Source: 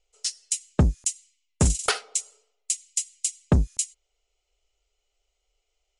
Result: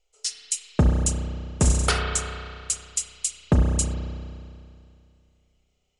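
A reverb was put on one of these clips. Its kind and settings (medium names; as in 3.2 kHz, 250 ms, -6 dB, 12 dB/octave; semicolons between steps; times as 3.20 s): spring tank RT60 2.4 s, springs 32 ms, chirp 30 ms, DRR 0.5 dB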